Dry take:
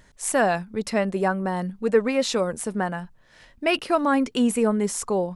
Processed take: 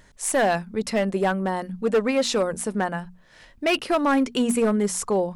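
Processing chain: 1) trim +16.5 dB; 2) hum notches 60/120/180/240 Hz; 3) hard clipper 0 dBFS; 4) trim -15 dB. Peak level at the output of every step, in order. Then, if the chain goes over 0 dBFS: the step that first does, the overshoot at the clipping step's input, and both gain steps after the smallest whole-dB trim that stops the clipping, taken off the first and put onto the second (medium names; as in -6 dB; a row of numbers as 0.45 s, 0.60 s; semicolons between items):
+10.0 dBFS, +9.5 dBFS, 0.0 dBFS, -15.0 dBFS; step 1, 9.5 dB; step 1 +6.5 dB, step 4 -5 dB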